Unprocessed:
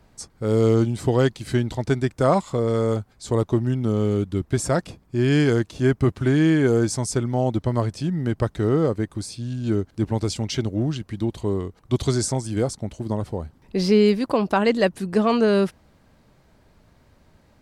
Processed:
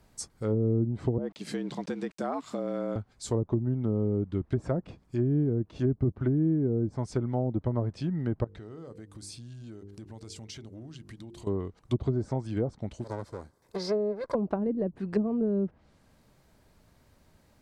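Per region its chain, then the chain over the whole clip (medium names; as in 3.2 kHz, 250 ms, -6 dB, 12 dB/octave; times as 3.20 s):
1.18–2.96 s: compression 4:1, threshold -23 dBFS + frequency shift +83 Hz + small samples zeroed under -46 dBFS
8.44–11.47 s: treble shelf 6.4 kHz -4 dB + hum notches 50/100/150/200/250/300/350/400/450/500 Hz + compression, threshold -36 dBFS
13.04–14.35 s: comb filter that takes the minimum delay 1.9 ms + high-pass 230 Hz 6 dB/octave + peaking EQ 2.8 kHz -14 dB 0.5 oct
whole clip: low-pass that closes with the level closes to 340 Hz, closed at -15.5 dBFS; treble shelf 6.9 kHz +10.5 dB; trim -6 dB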